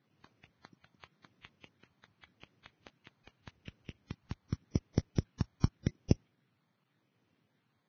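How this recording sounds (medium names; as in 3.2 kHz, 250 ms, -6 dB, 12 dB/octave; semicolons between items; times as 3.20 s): a quantiser's noise floor 12-bit, dither none; phasing stages 12, 0.86 Hz, lowest notch 490–1700 Hz; aliases and images of a low sample rate 5.5 kHz, jitter 0%; Vorbis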